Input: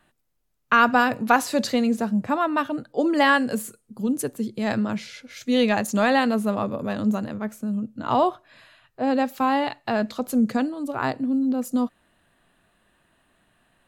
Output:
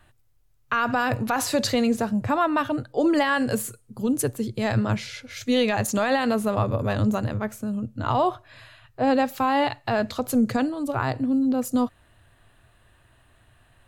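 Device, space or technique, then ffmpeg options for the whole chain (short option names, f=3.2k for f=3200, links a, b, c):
car stereo with a boomy subwoofer: -af "lowshelf=f=140:t=q:w=3:g=8,alimiter=limit=-16dB:level=0:latency=1:release=53,volume=3.5dB"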